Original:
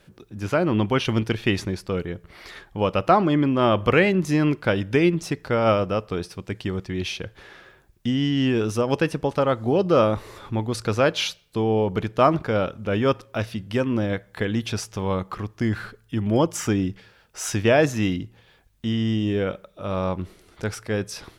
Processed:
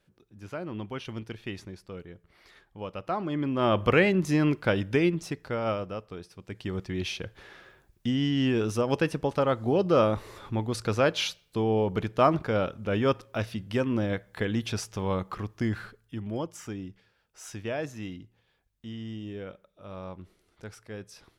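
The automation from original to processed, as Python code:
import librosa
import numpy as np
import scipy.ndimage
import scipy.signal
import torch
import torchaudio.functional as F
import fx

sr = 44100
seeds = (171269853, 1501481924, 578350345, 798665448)

y = fx.gain(x, sr, db=fx.line((3.04, -15.0), (3.77, -3.5), (4.8, -3.5), (6.27, -14.0), (6.79, -4.0), (15.58, -4.0), (16.57, -15.0)))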